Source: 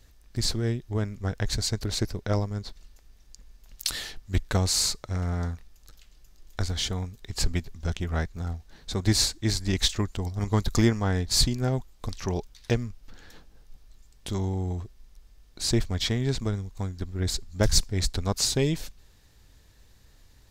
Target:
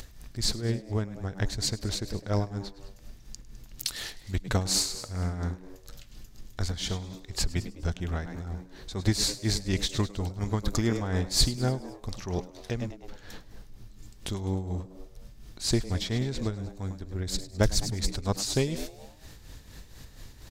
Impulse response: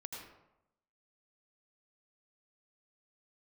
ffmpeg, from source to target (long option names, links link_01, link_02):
-filter_complex "[0:a]acompressor=mode=upward:threshold=-32dB:ratio=2.5,asplit=6[link_01][link_02][link_03][link_04][link_05][link_06];[link_02]adelay=103,afreqshift=96,volume=-13.5dB[link_07];[link_03]adelay=206,afreqshift=192,volume=-19.3dB[link_08];[link_04]adelay=309,afreqshift=288,volume=-25.2dB[link_09];[link_05]adelay=412,afreqshift=384,volume=-31dB[link_10];[link_06]adelay=515,afreqshift=480,volume=-36.9dB[link_11];[link_01][link_07][link_08][link_09][link_10][link_11]amix=inputs=6:normalize=0,tremolo=f=4.2:d=0.61"